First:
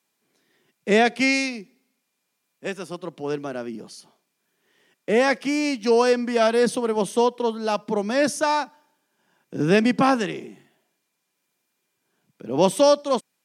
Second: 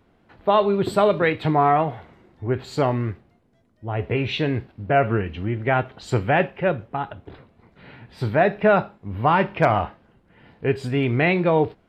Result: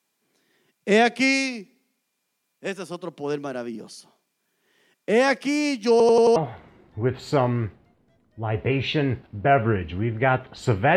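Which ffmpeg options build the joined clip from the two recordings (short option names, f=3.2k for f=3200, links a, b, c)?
-filter_complex "[0:a]apad=whole_dur=10.96,atrim=end=10.96,asplit=5[a][b][c][d][e];[a]atrim=end=6.002[f];[b]atrim=start=5.908:end=6.002[g];[c]atrim=start=5.908:end=6.002[h];[d]atrim=start=5.908:end=6.002[i];[e]atrim=start=5.908:end=6.002[j];[1:a]atrim=start=1.808:end=6.41[k];[f][g]acrossfade=d=0.004:c1=hsin:c2=hsin[l];[l][h]acrossfade=d=0.004:c1=hsin:c2=hsin[m];[m][i]acrossfade=d=0.004:c1=hsin:c2=hsin[n];[n][j]acrossfade=d=0.004:c1=hsin:c2=hsin[o];[o][k]acrossfade=d=0.004:c1=hsin:c2=hsin"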